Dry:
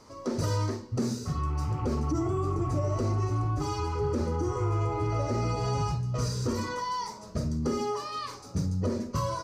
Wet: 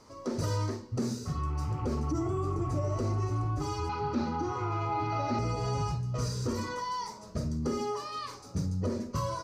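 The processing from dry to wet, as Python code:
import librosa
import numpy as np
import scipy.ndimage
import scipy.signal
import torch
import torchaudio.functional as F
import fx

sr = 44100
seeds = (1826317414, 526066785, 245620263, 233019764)

y = fx.cabinet(x, sr, low_hz=120.0, low_slope=12, high_hz=5800.0, hz=(240.0, 470.0, 800.0, 1400.0, 2500.0, 4000.0), db=(6, -10, 9, 6, 7, 9), at=(3.89, 5.39))
y = y * 10.0 ** (-2.5 / 20.0)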